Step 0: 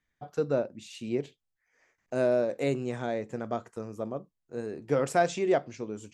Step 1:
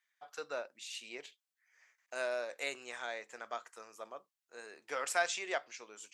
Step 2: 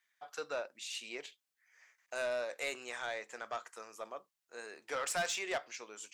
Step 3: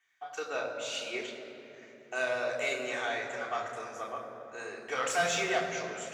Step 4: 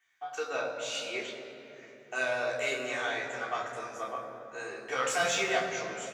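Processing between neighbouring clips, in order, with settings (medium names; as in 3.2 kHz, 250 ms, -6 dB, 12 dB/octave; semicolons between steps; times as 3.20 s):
high-pass 1.3 kHz 12 dB/octave; trim +2 dB
saturation -32 dBFS, distortion -10 dB; trim +3 dB
reverberation RT60 3.6 s, pre-delay 3 ms, DRR -3 dB; trim -5.5 dB
doubling 15 ms -4.5 dB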